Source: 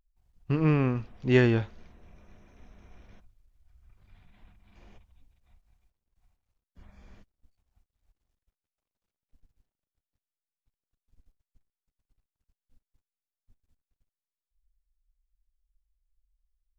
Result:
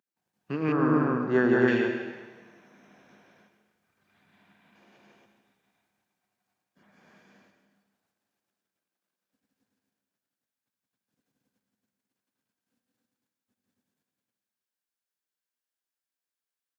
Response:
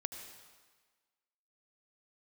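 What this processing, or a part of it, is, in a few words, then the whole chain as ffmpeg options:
stadium PA: -filter_complex "[0:a]highpass=frequency=180:width=0.5412,highpass=frequency=180:width=1.3066,equalizer=frequency=1600:width_type=o:width=0.22:gain=7,aecho=1:1:172|277:0.794|0.891[link_01];[1:a]atrim=start_sample=2205[link_02];[link_01][link_02]afir=irnorm=-1:irlink=0,asettb=1/sr,asplit=3[link_03][link_04][link_05];[link_03]atrim=end=0.724[link_06];[link_04]atrim=start=0.72:end=1.68,asetpts=PTS-STARTPTS,afade=type=in:duration=0.004:curve=qsin,afade=type=out:start_time=0.956:duration=0.004:curve=qsin,highshelf=frequency=1800:width_type=q:width=3:gain=-9[link_07];[link_05]atrim=start=1.676[link_08];[link_06][link_07]acrossfade=duration=0.004:curve1=hsin:curve2=qsin[link_09];[link_09][link_08]acrossfade=duration=0.004:curve1=qsin:curve2=hsin"

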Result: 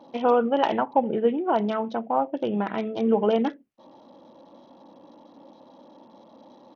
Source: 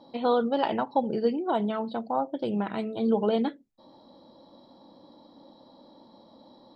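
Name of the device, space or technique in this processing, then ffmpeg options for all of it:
Bluetooth headset: -af "highpass=frequency=200:poles=1,aresample=8000,aresample=44100,volume=4.5dB" -ar 48000 -c:a sbc -b:a 64k

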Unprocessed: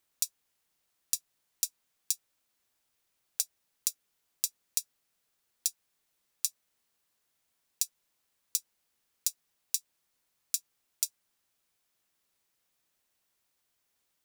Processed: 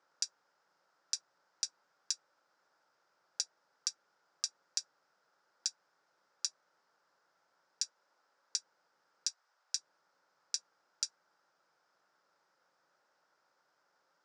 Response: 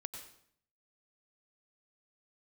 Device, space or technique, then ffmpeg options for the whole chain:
television speaker: -filter_complex "[0:a]lowpass=7700,asettb=1/sr,asplit=3[link_01][link_02][link_03];[link_01]atrim=end=7.824[link_04];[link_02]atrim=start=7.82:end=8.58,asetpts=PTS-STARTPTS,afade=type=in:duration=0.004:curve=qsin,afade=type=out:start_time=0.756:duration=0.004:curve=qsin,highpass=220[link_05];[link_03]atrim=start=8.576[link_06];[link_04][link_05]acrossfade=duration=0.004:curve1=hsin:curve2=qsin[link_07];[link_07][link_06]acrossfade=duration=0.004:curve1=qsin:curve2=hsin,asettb=1/sr,asplit=3[link_08][link_09][link_10];[link_08]atrim=end=9.294[link_11];[link_09]atrim=start=9.29:end=9.76,asetpts=PTS-STARTPTS,afade=type=in:duration=0.004:curve=qsin,afade=type=out:start_time=0.466:duration=0.004:curve=qsin,highpass=650[link_12];[link_10]atrim=start=9.756[link_13];[link_11][link_12]acrossfade=duration=0.004:curve1=hsin:curve2=qsin[link_14];[link_14][link_13]acrossfade=duration=0.004:curve1=qsin:curve2=hsin,highpass=frequency=160:width=0.5412,highpass=frequency=160:width=1.3066,equalizer=frequency=230:width_type=q:width=4:gain=-9,equalizer=frequency=550:width_type=q:width=4:gain=7,equalizer=frequency=860:width_type=q:width=4:gain=6,equalizer=frequency=1400:width_type=q:width=4:gain=8,equalizer=frequency=5100:width_type=q:width=4:gain=9,lowpass=frequency=7100:width=0.5412,lowpass=frequency=7100:width=1.3066,highshelf=frequency=2000:width_type=q:width=1.5:gain=-9,volume=6.5dB"

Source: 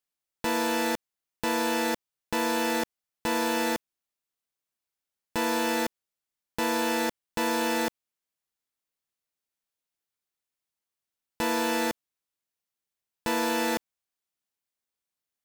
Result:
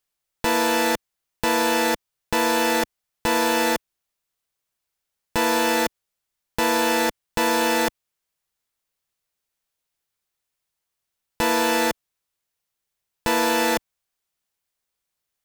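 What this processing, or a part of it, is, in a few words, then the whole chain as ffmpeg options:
low shelf boost with a cut just above: -af "lowshelf=frequency=76:gain=6.5,equalizer=frequency=260:width_type=o:width=0.6:gain=-5.5,volume=7dB"

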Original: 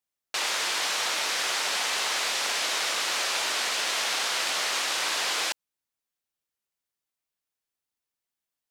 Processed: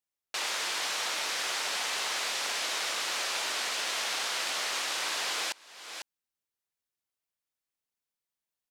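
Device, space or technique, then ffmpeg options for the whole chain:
ducked delay: -filter_complex "[0:a]asplit=3[link_01][link_02][link_03];[link_02]adelay=498,volume=-5.5dB[link_04];[link_03]apad=whole_len=406063[link_05];[link_04][link_05]sidechaincompress=threshold=-45dB:ratio=12:attack=5.2:release=373[link_06];[link_01][link_06]amix=inputs=2:normalize=0,volume=-4.5dB"

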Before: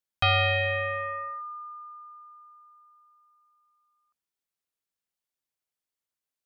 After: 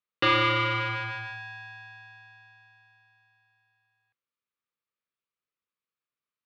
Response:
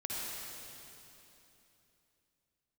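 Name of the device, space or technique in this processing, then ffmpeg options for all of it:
ring modulator pedal into a guitar cabinet: -af "aeval=exprs='val(0)*sgn(sin(2*PI*440*n/s))':channel_layout=same,highpass=89,equalizer=frequency=120:width_type=q:width=4:gain=5,equalizer=frequency=210:width_type=q:width=4:gain=3,equalizer=frequency=480:width_type=q:width=4:gain=6,equalizer=frequency=730:width_type=q:width=4:gain=-10,equalizer=frequency=1200:width_type=q:width=4:gain=10,equalizer=frequency=2400:width_type=q:width=4:gain=4,lowpass=frequency=4100:width=0.5412,lowpass=frequency=4100:width=1.3066,volume=-2.5dB"

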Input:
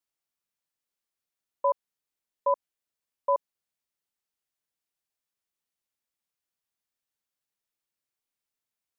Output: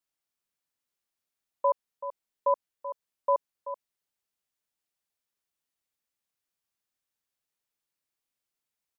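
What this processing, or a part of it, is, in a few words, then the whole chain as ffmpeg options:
ducked delay: -filter_complex "[0:a]asplit=3[link_01][link_02][link_03];[link_02]adelay=382,volume=-7.5dB[link_04];[link_03]apad=whole_len=413158[link_05];[link_04][link_05]sidechaincompress=threshold=-34dB:ratio=8:attack=6.7:release=499[link_06];[link_01][link_06]amix=inputs=2:normalize=0"

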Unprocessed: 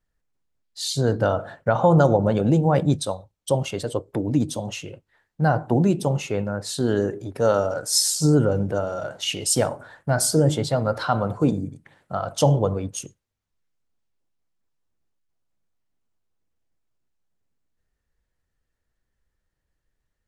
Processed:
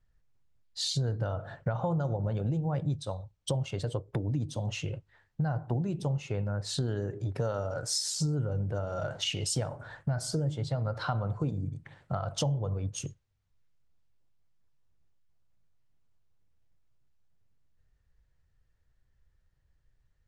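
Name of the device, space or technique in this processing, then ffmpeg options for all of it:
jukebox: -af "lowpass=6700,lowshelf=frequency=170:width_type=q:width=1.5:gain=7.5,acompressor=threshold=-29dB:ratio=6"

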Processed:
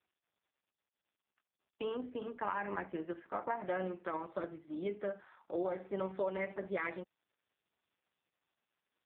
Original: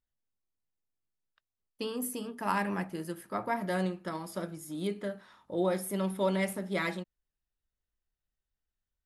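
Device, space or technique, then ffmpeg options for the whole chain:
voicemail: -af "highpass=350,lowpass=2600,acompressor=threshold=-33dB:ratio=8,volume=2dB" -ar 8000 -c:a libopencore_amrnb -b:a 4750

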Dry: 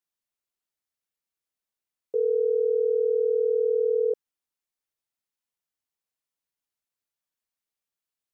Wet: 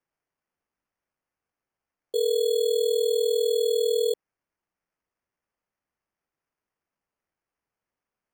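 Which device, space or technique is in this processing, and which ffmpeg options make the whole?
crushed at another speed: -af "asetrate=22050,aresample=44100,acrusher=samples=23:mix=1:aa=0.000001,asetrate=88200,aresample=44100"

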